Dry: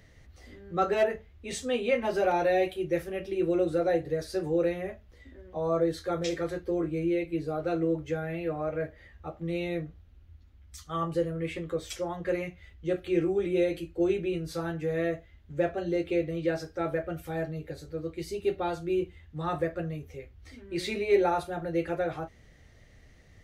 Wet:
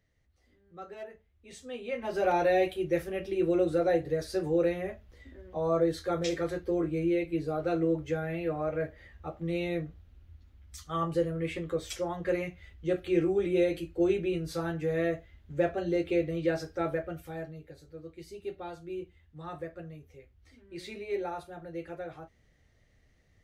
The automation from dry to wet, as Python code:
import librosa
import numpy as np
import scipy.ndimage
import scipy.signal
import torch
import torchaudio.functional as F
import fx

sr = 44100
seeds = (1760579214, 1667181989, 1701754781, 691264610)

y = fx.gain(x, sr, db=fx.line((1.04, -18.0), (1.89, -9.5), (2.31, 0.0), (16.82, 0.0), (17.68, -10.0)))